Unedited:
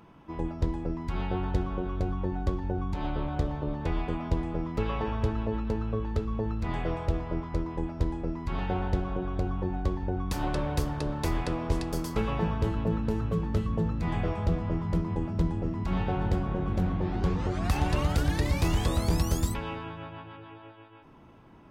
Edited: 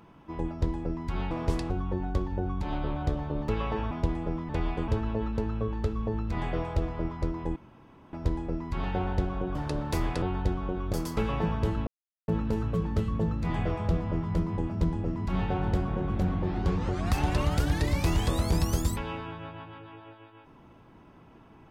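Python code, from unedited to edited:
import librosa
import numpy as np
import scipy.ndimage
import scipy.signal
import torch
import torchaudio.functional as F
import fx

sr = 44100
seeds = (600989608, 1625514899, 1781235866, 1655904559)

y = fx.edit(x, sr, fx.swap(start_s=1.31, length_s=0.71, other_s=11.53, other_length_s=0.39),
    fx.swap(start_s=3.8, length_s=0.39, other_s=4.77, other_length_s=0.43),
    fx.insert_room_tone(at_s=7.88, length_s=0.57),
    fx.cut(start_s=9.3, length_s=1.56),
    fx.insert_silence(at_s=12.86, length_s=0.41), tone=tone)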